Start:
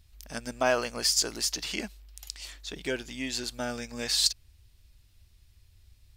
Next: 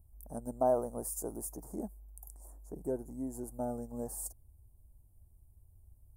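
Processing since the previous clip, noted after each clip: Chebyshev band-stop 830–9800 Hz, order 3; gain -1.5 dB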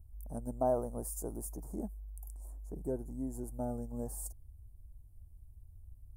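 low shelf 150 Hz +11 dB; gain -3 dB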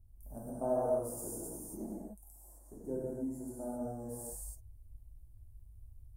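non-linear reverb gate 0.3 s flat, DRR -8 dB; gain -8.5 dB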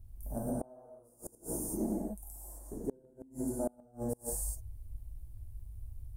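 flipped gate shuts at -31 dBFS, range -31 dB; gain +8.5 dB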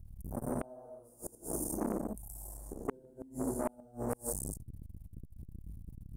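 core saturation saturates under 710 Hz; gain +3.5 dB

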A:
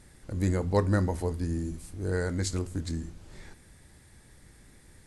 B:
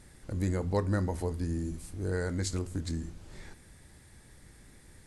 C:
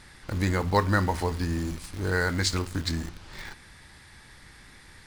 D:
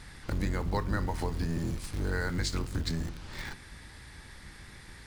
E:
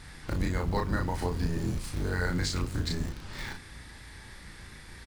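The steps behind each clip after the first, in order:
compressor 1.5:1, threshold -32 dBFS, peak gain reduction 5 dB
band shelf 2100 Hz +10 dB 3 oct; in parallel at -10 dB: bit-crush 6-bit; on the sum: gain +1.5 dB
octaver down 1 oct, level +3 dB; compressor 3:1, threshold -30 dBFS, peak gain reduction 11 dB
doubler 34 ms -3 dB

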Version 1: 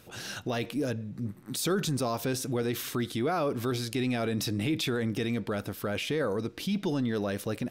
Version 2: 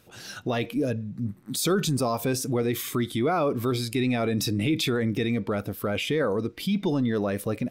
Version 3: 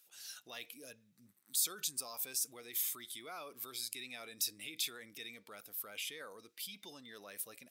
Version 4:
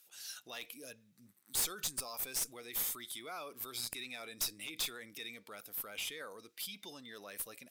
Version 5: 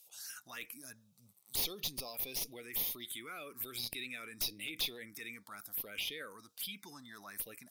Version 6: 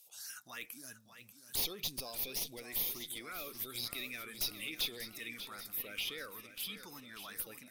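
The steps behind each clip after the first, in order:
spectral noise reduction 8 dB; gain +4.5 dB
differentiator; gain -4 dB
one-sided clip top -38.5 dBFS; gain +2.5 dB
envelope phaser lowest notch 250 Hz, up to 1500 Hz, full sweep at -37.5 dBFS; gain +3.5 dB
warbling echo 0.59 s, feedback 63%, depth 104 cents, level -11 dB

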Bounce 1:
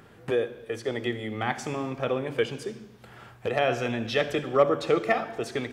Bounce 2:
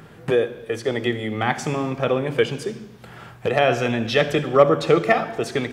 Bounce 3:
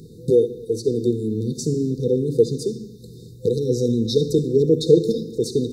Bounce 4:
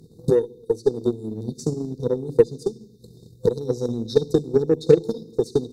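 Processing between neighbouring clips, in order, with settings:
bell 160 Hz +8.5 dB 0.23 oct; gain +6.5 dB
FFT band-reject 510–3600 Hz; gain +3.5 dB
added harmonics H 8 -33 dB, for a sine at -2 dBFS; transient shaper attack +10 dB, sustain -4 dB; gain -7.5 dB

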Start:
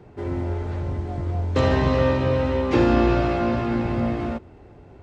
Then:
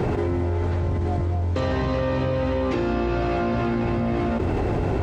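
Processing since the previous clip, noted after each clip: fast leveller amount 100%; gain -7.5 dB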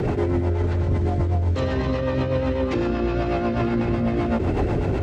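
limiter -19 dBFS, peak gain reduction 7 dB; rotary speaker horn 8 Hz; gain +6 dB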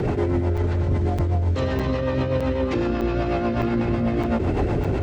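crackling interface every 0.61 s, samples 256, zero, from 0.57

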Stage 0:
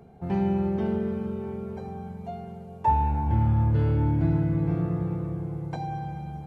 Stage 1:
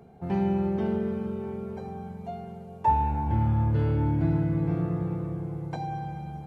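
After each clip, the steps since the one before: low shelf 78 Hz -6 dB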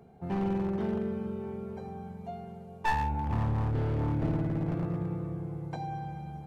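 one-sided fold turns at -23 dBFS; gain -3.5 dB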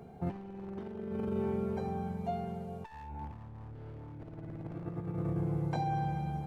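negative-ratio compressor -36 dBFS, ratio -0.5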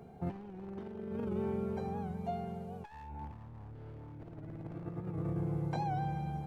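record warp 78 rpm, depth 100 cents; gain -2 dB

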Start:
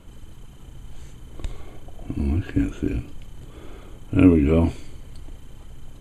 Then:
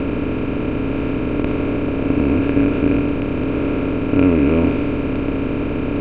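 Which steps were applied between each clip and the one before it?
per-bin compression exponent 0.2; LPF 3300 Hz 24 dB/oct; low shelf 250 Hz -4 dB; gain -1 dB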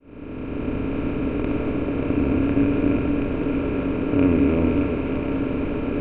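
opening faded in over 0.72 s; air absorption 120 m; split-band echo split 370 Hz, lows 0.12 s, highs 0.584 s, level -6 dB; gain -5 dB

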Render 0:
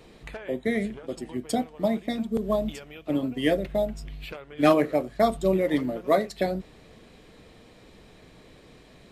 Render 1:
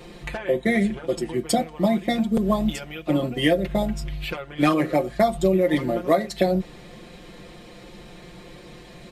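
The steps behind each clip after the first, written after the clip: comb 5.7 ms, depth 75%; compressor 6:1, threshold -22 dBFS, peak gain reduction 10 dB; gain +6.5 dB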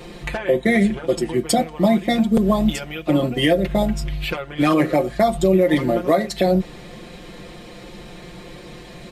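maximiser +11 dB; gain -6 dB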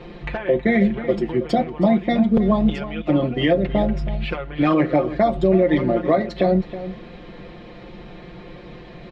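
air absorption 260 m; outdoor echo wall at 55 m, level -13 dB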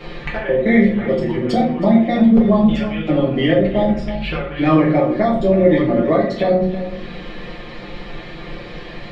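vibrato 3.9 Hz 6.9 cents; reverb RT60 0.50 s, pre-delay 5 ms, DRR -4.5 dB; mismatched tape noise reduction encoder only; gain -3 dB

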